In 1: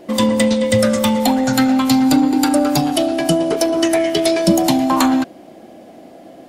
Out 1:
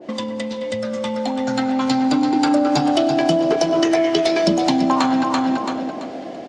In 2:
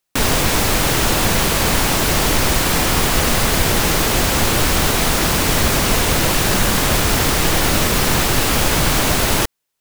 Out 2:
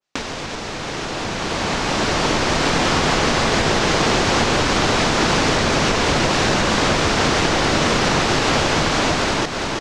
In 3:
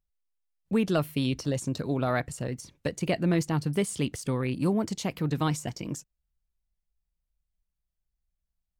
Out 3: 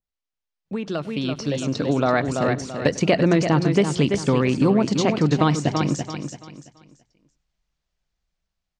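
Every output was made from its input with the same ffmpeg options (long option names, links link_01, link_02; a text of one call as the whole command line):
ffmpeg -i in.wav -filter_complex "[0:a]lowpass=frequency=6400:width=0.5412,lowpass=frequency=6400:width=1.3066,bandreject=frequency=60:width_type=h:width=6,bandreject=frequency=120:width_type=h:width=6,bandreject=frequency=180:width_type=h:width=6,asplit=2[link_01][link_02];[link_02]aecho=0:1:335|670|1005|1340:0.376|0.113|0.0338|0.0101[link_03];[link_01][link_03]amix=inputs=2:normalize=0,acompressor=threshold=-25dB:ratio=6,lowshelf=frequency=91:gain=-11.5,dynaudnorm=framelen=110:gausssize=31:maxgain=12dB,asplit=2[link_04][link_05];[link_05]adelay=99.13,volume=-21dB,highshelf=frequency=4000:gain=-2.23[link_06];[link_04][link_06]amix=inputs=2:normalize=0,adynamicequalizer=threshold=0.02:dfrequency=1600:dqfactor=0.7:tfrequency=1600:tqfactor=0.7:attack=5:release=100:ratio=0.375:range=1.5:mode=cutabove:tftype=highshelf,volume=1.5dB" out.wav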